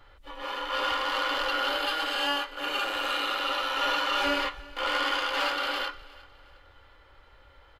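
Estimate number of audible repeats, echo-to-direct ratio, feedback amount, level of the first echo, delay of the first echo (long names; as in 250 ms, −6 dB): 2, −21.0 dB, 35%, −21.5 dB, 359 ms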